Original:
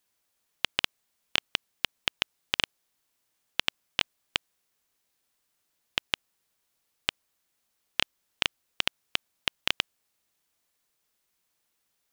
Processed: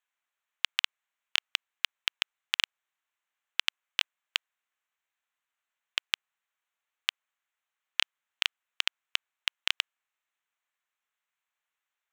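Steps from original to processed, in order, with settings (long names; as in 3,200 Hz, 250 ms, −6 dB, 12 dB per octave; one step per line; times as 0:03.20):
adaptive Wiener filter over 9 samples
high-pass filter 1,200 Hz 12 dB per octave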